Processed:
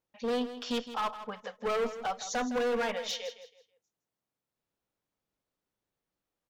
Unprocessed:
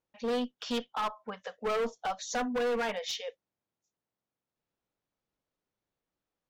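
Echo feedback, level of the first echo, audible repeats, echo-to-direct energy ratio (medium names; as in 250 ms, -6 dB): 28%, -12.5 dB, 3, -12.0 dB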